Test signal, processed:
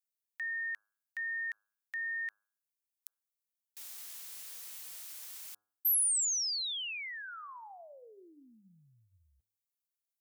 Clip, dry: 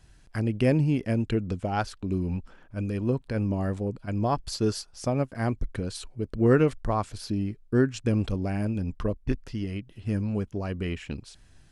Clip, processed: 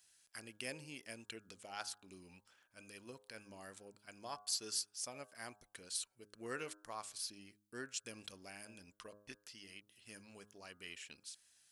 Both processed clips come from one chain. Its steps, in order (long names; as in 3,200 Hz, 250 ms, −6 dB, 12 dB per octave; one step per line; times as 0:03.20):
first difference
hum removal 103.4 Hz, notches 16